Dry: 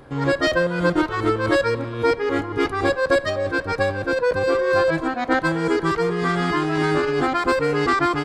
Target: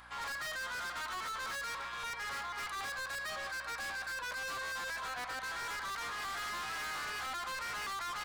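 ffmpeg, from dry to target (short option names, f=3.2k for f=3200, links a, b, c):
-af "highpass=f=980:w=0.5412,highpass=f=980:w=1.3066,alimiter=limit=-21dB:level=0:latency=1:release=49,asoftclip=type=hard:threshold=-38.5dB,aeval=exprs='val(0)+0.000794*(sin(2*PI*60*n/s)+sin(2*PI*2*60*n/s)/2+sin(2*PI*3*60*n/s)/3+sin(2*PI*4*60*n/s)/4+sin(2*PI*5*60*n/s)/5)':c=same"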